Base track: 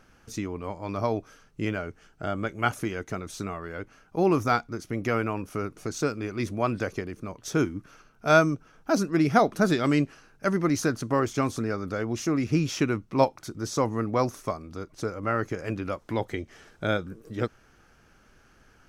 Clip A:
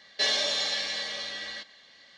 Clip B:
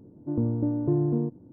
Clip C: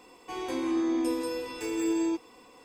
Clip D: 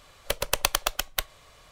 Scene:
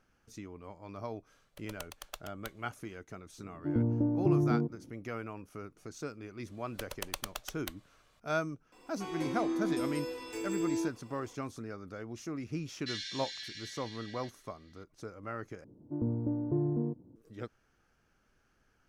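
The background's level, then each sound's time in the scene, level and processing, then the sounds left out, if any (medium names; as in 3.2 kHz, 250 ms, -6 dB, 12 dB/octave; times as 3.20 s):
base track -13.5 dB
1.27 s: add D -17 dB + tremolo triangle 2.6 Hz, depth 80%
3.38 s: add B -3 dB
6.49 s: add D -14.5 dB
8.72 s: add C -5.5 dB
12.67 s: add A -13.5 dB + Chebyshev high-pass 1.5 kHz, order 6
15.64 s: replace with B -6.5 dB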